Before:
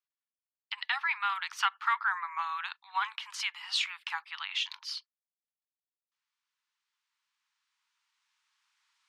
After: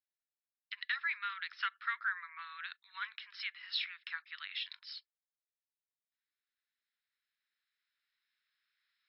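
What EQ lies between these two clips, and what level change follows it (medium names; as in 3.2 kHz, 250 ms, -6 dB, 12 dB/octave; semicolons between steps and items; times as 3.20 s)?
ladder high-pass 1.6 kHz, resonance 40%; rippled Chebyshev low-pass 5.4 kHz, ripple 9 dB; +4.5 dB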